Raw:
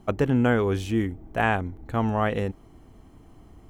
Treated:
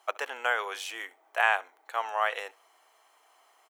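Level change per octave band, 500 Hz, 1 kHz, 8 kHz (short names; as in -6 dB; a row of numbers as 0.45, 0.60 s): -10.0 dB, -1.0 dB, n/a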